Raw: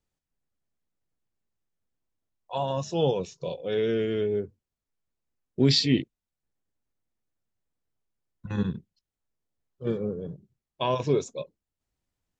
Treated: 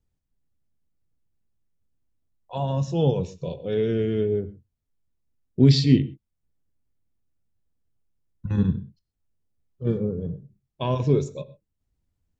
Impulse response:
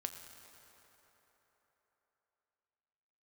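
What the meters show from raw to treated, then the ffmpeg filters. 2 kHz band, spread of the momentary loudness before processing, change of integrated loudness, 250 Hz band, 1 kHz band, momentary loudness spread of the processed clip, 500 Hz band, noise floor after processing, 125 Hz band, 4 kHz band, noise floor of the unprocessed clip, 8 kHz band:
-3.0 dB, 19 LU, +3.5 dB, +5.0 dB, -2.0 dB, 19 LU, +1.0 dB, -79 dBFS, +8.5 dB, -3.5 dB, under -85 dBFS, n/a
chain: -filter_complex "[0:a]lowshelf=f=270:g=9,asplit=2[a][b];[1:a]atrim=start_sample=2205,atrim=end_sample=6174,lowshelf=f=390:g=9[c];[b][c]afir=irnorm=-1:irlink=0,volume=1.5dB[d];[a][d]amix=inputs=2:normalize=0,volume=-9dB"

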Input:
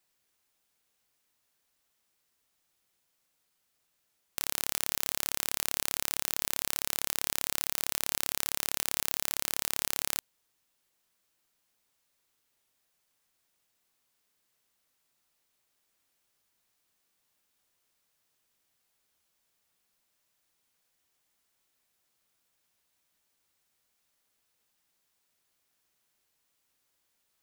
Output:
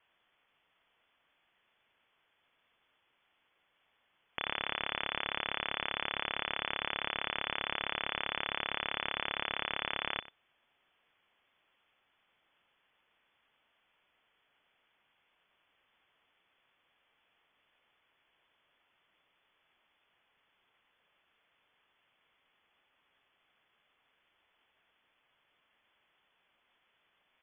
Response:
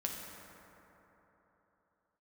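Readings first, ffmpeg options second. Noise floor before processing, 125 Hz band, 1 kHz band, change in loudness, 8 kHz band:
-77 dBFS, -2.5 dB, +5.0 dB, -4.5 dB, under -40 dB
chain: -filter_complex "[0:a]acontrast=53,lowpass=f=3k:t=q:w=0.5098,lowpass=f=3k:t=q:w=0.6013,lowpass=f=3k:t=q:w=0.9,lowpass=f=3k:t=q:w=2.563,afreqshift=-3500,asplit=2[a][b];[b]adelay=93.29,volume=-17dB,highshelf=f=4k:g=-2.1[c];[a][c]amix=inputs=2:normalize=0,volume=3.5dB"

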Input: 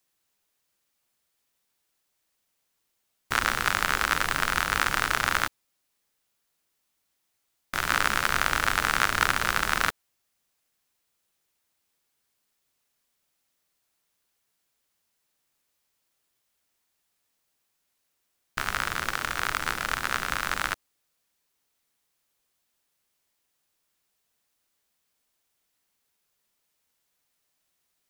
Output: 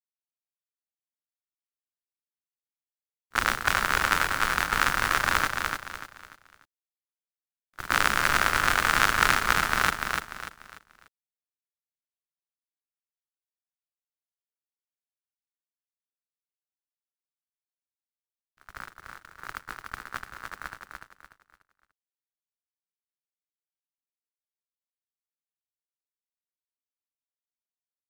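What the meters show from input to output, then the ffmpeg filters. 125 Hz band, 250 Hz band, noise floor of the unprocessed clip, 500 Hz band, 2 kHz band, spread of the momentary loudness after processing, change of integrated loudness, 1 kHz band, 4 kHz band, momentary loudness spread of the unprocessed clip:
0.0 dB, +0.5 dB, -77 dBFS, +0.5 dB, +0.5 dB, 19 LU, +2.0 dB, +1.0 dB, -0.5 dB, 6 LU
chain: -af "agate=range=-39dB:threshold=-25dB:ratio=16:detection=peak,aecho=1:1:294|588|882|1176:0.596|0.203|0.0689|0.0234,volume=1.5dB"

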